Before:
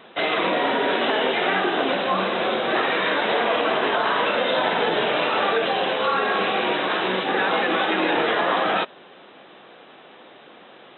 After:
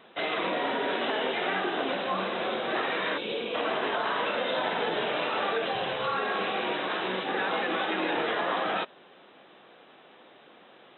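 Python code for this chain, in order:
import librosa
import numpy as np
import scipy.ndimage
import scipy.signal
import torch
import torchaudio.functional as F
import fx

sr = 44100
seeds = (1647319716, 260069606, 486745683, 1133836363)

y = fx.spec_box(x, sr, start_s=3.18, length_s=0.37, low_hz=560.0, high_hz=2200.0, gain_db=-14)
y = fx.low_shelf_res(y, sr, hz=160.0, db=10.5, q=1.5, at=(5.75, 6.15))
y = y * 10.0 ** (-7.5 / 20.0)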